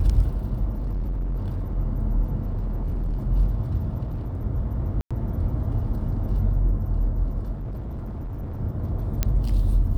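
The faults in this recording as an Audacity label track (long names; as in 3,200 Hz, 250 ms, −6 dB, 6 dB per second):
0.800000	1.760000	clipping −23.5 dBFS
2.420000	3.270000	clipping −22.5 dBFS
4.030000	4.450000	clipping −25.5 dBFS
5.010000	5.110000	drop-out 96 ms
7.520000	8.610000	clipping −28.5 dBFS
9.230000	9.230000	click −8 dBFS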